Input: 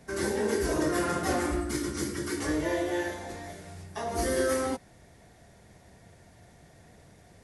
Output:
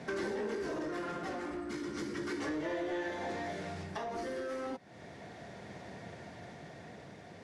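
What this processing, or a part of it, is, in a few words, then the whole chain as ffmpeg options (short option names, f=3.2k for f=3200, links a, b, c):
AM radio: -af "highpass=150,lowpass=4.2k,acompressor=threshold=-43dB:ratio=5,asoftclip=type=tanh:threshold=-39dB,tremolo=f=0.34:d=0.33,volume=10dB"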